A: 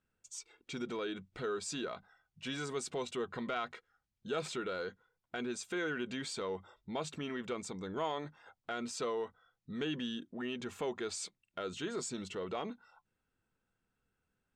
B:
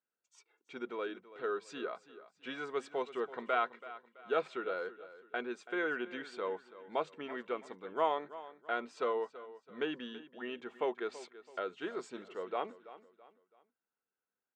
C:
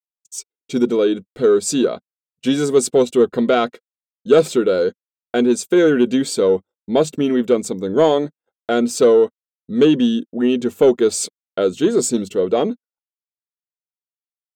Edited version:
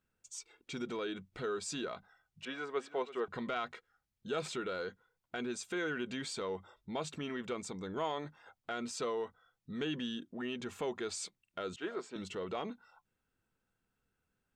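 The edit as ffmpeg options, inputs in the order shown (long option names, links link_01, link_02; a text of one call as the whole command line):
ffmpeg -i take0.wav -i take1.wav -filter_complex "[1:a]asplit=2[link_01][link_02];[0:a]asplit=3[link_03][link_04][link_05];[link_03]atrim=end=2.452[link_06];[link_01]atrim=start=2.448:end=3.282[link_07];[link_04]atrim=start=3.278:end=11.762[link_08];[link_02]atrim=start=11.758:end=12.162[link_09];[link_05]atrim=start=12.158[link_10];[link_06][link_07]acrossfade=duration=0.004:curve1=hsin:curve2=hsin[link_11];[link_11][link_08]acrossfade=duration=0.004:curve1=hsin:curve2=hsin[link_12];[link_12][link_09]acrossfade=duration=0.004:curve1=hsin:curve2=hsin[link_13];[link_13][link_10]acrossfade=duration=0.004:curve1=hsin:curve2=hsin" out.wav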